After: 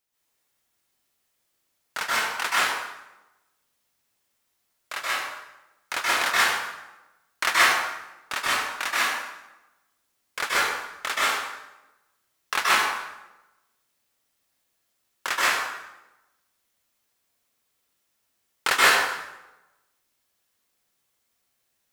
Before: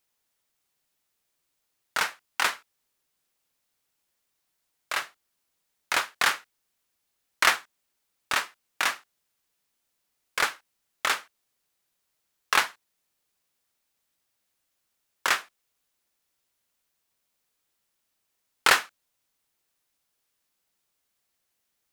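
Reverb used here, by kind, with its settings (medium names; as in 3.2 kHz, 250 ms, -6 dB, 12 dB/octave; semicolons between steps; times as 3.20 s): plate-style reverb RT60 1 s, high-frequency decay 0.75×, pre-delay 115 ms, DRR -8.5 dB; trim -4.5 dB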